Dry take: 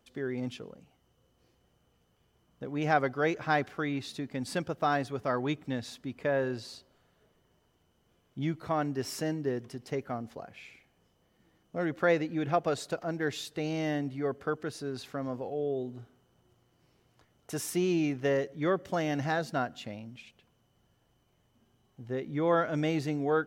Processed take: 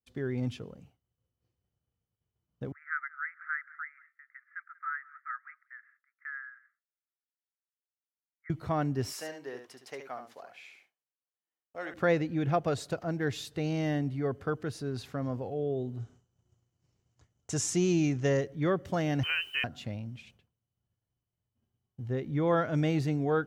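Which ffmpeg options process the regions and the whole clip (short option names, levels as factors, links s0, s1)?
-filter_complex "[0:a]asettb=1/sr,asplit=3[s0][s1][s2];[s0]atrim=end=2.724[s3];[s1]atrim=start=2.72:end=8.5,asetpts=PTS-STARTPTS,afade=t=in:d=0.004:c=qsin,afade=t=out:st=5.776:d=0.004:c=qsin,asuperpass=centerf=1600:order=12:qfactor=1.9,aecho=1:1:188:0.0794,atrim=end_sample=254898[s4];[s2]atrim=start=8.496[s5];[s3][s4]acrossfade=d=0.004:c1=hsin:c2=qsin[s6];[s6][s5]acrossfade=d=0.004:c1=qsin:c2=hsin,asettb=1/sr,asplit=3[s7][s8][s9];[s7]atrim=end=9.124[s10];[s8]atrim=start=9.12:end=11.94,asetpts=PTS-STARTPTS,afade=t=in:d=0.004:c=qsin,afade=t=out:st=2.816:d=0.004:c=qsin,highpass=680,aecho=1:1:72:0.422,atrim=end_sample=124362[s11];[s9]atrim=start=11.936[s12];[s10][s11]acrossfade=d=0.004:c1=hsin:c2=qsin[s13];[s13][s12]acrossfade=d=0.004:c1=qsin:c2=hsin,asettb=1/sr,asplit=3[s14][s15][s16];[s14]atrim=end=16.004[s17];[s15]atrim=start=16:end=18.41,asetpts=PTS-STARTPTS,afade=t=in:d=0.004:c=qsin,afade=t=out:st=2.406:d=0.004:c=qsin,lowpass=f=7000:t=q:w=4.1,lowshelf=f=140:g=2.5[s18];[s16]atrim=start=18.406[s19];[s17][s18]acrossfade=d=0.004:c1=hsin:c2=qsin[s20];[s20][s19]acrossfade=d=0.004:c1=qsin:c2=hsin,asettb=1/sr,asplit=3[s21][s22][s23];[s21]atrim=end=19.234[s24];[s22]atrim=start=19.23:end=19.64,asetpts=PTS-STARTPTS,afade=t=in:d=0.004:c=qsin,afade=t=out:st=0.406:d=0.004:c=qsin,bandreject=f=50.09:t=h:w=4,bandreject=f=100.18:t=h:w=4,bandreject=f=150.27:t=h:w=4,bandreject=f=200.36:t=h:w=4,bandreject=f=250.45:t=h:w=4,bandreject=f=300.54:t=h:w=4,lowpass=f=2700:t=q:w=0.5098,lowpass=f=2700:t=q:w=0.6013,lowpass=f=2700:t=q:w=0.9,lowpass=f=2700:t=q:w=2.563,afreqshift=-3200,acrusher=bits=8:mix=0:aa=0.5[s25];[s23]atrim=start=19.636[s26];[s24][s25]acrossfade=d=0.004:c1=hsin:c2=qsin[s27];[s27][s26]acrossfade=d=0.004:c1=qsin:c2=hsin,agate=range=0.0224:threshold=0.00158:ratio=3:detection=peak,equalizer=f=93:t=o:w=1.6:g=12,volume=0.841"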